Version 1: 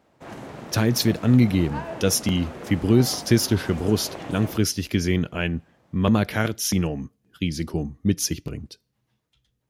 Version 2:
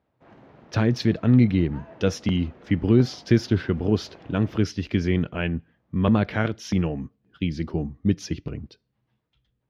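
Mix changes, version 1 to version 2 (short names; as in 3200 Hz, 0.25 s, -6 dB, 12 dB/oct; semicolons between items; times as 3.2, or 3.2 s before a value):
background -12.0 dB; master: add air absorption 220 m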